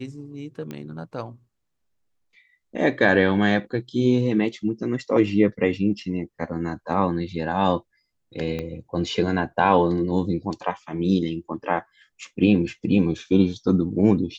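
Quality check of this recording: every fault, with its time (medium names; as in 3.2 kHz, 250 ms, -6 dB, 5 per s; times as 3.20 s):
0.71 s: pop -20 dBFS
8.59 s: pop -17 dBFS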